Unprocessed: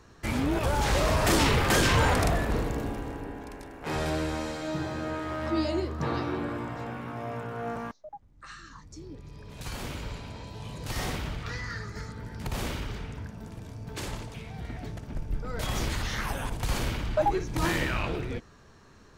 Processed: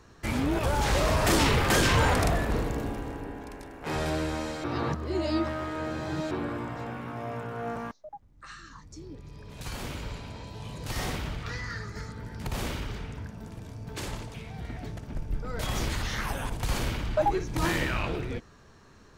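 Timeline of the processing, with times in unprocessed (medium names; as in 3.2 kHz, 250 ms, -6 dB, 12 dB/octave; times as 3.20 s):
4.64–6.31 s: reverse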